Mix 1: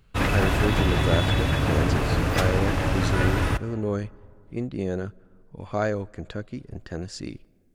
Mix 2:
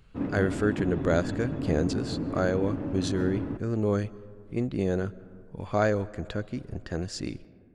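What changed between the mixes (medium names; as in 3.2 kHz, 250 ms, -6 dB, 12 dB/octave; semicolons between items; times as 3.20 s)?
speech: send +9.5 dB; background: add band-pass filter 260 Hz, Q 2.1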